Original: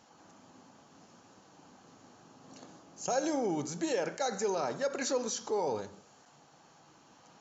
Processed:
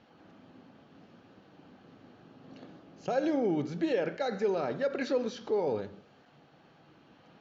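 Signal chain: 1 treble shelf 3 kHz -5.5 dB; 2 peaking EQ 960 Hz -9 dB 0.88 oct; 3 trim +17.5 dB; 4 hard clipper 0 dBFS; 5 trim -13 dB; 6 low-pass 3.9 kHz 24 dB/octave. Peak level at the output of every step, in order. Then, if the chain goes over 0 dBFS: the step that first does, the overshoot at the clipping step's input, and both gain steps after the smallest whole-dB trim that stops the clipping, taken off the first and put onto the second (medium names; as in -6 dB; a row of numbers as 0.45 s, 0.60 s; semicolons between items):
-21.0 dBFS, -22.0 dBFS, -4.5 dBFS, -4.5 dBFS, -17.5 dBFS, -18.0 dBFS; nothing clips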